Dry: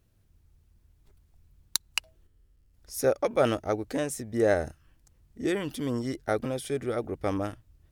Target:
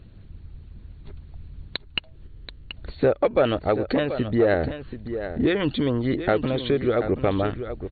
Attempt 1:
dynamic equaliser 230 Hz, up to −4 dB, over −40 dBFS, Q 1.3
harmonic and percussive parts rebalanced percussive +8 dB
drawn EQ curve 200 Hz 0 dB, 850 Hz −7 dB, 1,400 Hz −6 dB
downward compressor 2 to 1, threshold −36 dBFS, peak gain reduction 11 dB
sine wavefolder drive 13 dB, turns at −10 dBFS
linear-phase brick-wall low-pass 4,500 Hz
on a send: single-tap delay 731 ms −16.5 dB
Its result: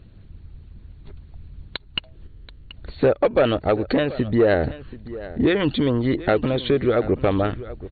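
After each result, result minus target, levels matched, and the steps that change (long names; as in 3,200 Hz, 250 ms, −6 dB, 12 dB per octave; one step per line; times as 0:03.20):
echo-to-direct −6 dB; downward compressor: peak gain reduction −3.5 dB
change: single-tap delay 731 ms −10.5 dB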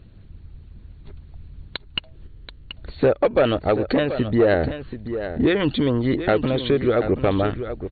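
downward compressor: peak gain reduction −3.5 dB
change: downward compressor 2 to 1, threshold −42.5 dBFS, peak gain reduction 14.5 dB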